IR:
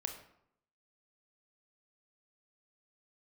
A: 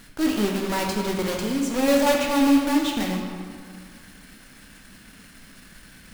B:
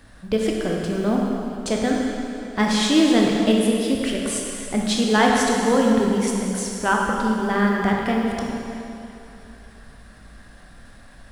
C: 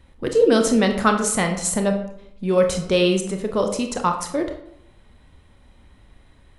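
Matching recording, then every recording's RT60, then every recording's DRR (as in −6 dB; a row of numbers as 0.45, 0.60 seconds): C; 2.0, 2.9, 0.75 seconds; 0.5, −1.5, 4.5 decibels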